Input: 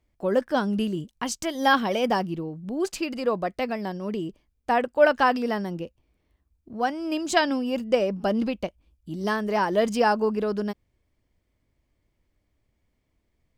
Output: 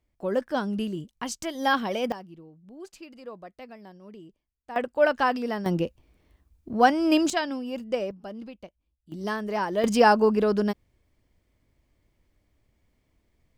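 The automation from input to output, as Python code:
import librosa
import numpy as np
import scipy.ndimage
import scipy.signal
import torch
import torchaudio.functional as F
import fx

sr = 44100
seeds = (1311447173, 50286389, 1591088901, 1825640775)

y = fx.gain(x, sr, db=fx.steps((0.0, -3.5), (2.12, -16.0), (4.76, -3.0), (5.66, 7.0), (7.3, -6.0), (8.11, -14.5), (9.12, -4.0), (9.84, 3.5)))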